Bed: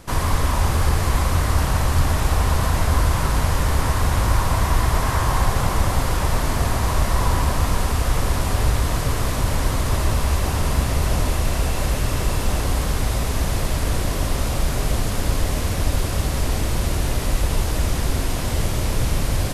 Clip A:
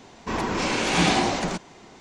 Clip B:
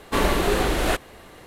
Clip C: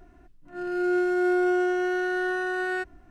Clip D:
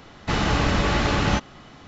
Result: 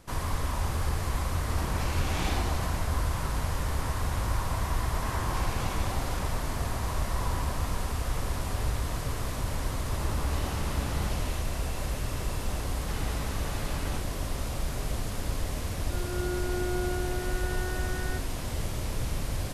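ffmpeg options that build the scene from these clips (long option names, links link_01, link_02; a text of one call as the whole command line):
ffmpeg -i bed.wav -i cue0.wav -i cue1.wav -i cue2.wav -i cue3.wav -filter_complex "[1:a]asplit=2[link_01][link_02];[4:a]asplit=2[link_03][link_04];[0:a]volume=-10.5dB[link_05];[link_02]acompressor=threshold=-22dB:ratio=6:attack=3.2:release=140:knee=1:detection=peak[link_06];[link_03]acrossover=split=1800[link_07][link_08];[link_08]adelay=310[link_09];[link_07][link_09]amix=inputs=2:normalize=0[link_10];[link_01]atrim=end=2,asetpts=PTS-STARTPTS,volume=-13.5dB,afade=type=in:duration=0.004:curve=hsin,afade=type=out:start_time=1.996:duration=0.004:curve=hsin,adelay=1200[link_11];[link_06]atrim=end=2,asetpts=PTS-STARTPTS,volume=-14.5dB,afade=type=in:duration=0.004:curve=hsin,afade=type=out:start_time=1.996:duration=0.004:curve=hsin,adelay=4750[link_12];[link_10]atrim=end=1.87,asetpts=PTS-STARTPTS,volume=-16dB,afade=type=in:duration=0.004:curve=hsin,afade=type=out:start_time=1.866:duration=0.004:curve=hsin,adelay=9720[link_13];[link_04]atrim=end=1.87,asetpts=PTS-STARTPTS,volume=-18dB,afade=type=in:duration=0.004:curve=hsin,afade=type=out:start_time=1.866:duration=0.004:curve=hsin,adelay=12600[link_14];[3:a]atrim=end=3.1,asetpts=PTS-STARTPTS,volume=-10dB,afade=type=in:duration=0.004:curve=hsin,afade=type=out:start_time=3.096:duration=0.004:curve=hsin,adelay=15350[link_15];[link_05][link_11][link_12][link_13][link_14][link_15]amix=inputs=6:normalize=0" out.wav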